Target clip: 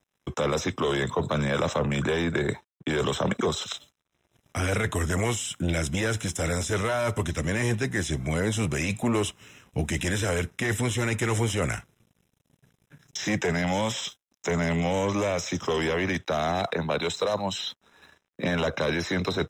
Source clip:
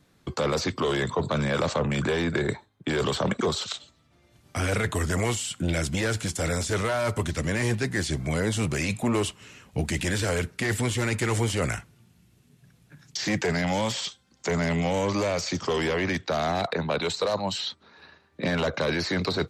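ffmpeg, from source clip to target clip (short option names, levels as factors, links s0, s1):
-af "aeval=exprs='sgn(val(0))*max(abs(val(0))-0.00126,0)':c=same,asuperstop=centerf=4500:order=12:qfactor=5.3"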